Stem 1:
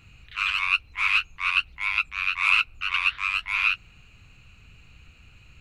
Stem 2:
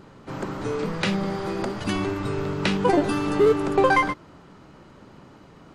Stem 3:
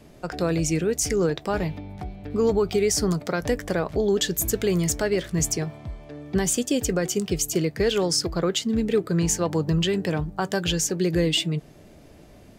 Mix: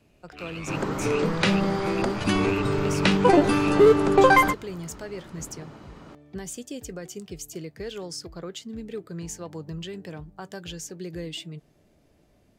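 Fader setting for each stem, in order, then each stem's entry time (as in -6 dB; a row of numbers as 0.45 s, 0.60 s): -16.0 dB, +2.5 dB, -13.0 dB; 0.00 s, 0.40 s, 0.00 s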